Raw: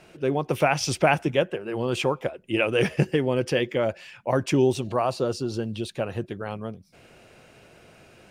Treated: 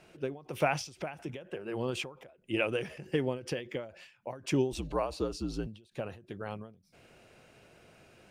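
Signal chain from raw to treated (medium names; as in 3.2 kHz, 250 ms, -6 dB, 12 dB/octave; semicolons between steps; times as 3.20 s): 4.72–5.67 s: frequency shift -59 Hz; endings held to a fixed fall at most 130 dB/s; trim -6.5 dB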